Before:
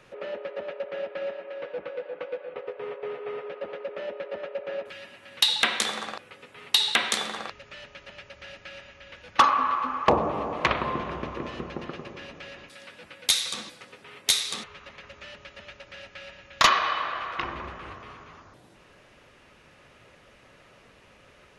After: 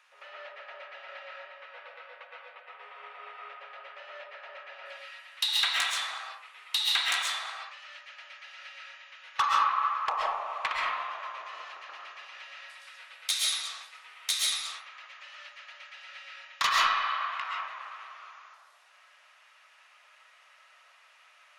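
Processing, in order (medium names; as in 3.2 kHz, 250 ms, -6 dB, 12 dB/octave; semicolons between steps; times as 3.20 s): high-pass 900 Hz 24 dB/octave; saturation -13.5 dBFS, distortion -15 dB; reverberation RT60 0.60 s, pre-delay 90 ms, DRR -3 dB; trim -5.5 dB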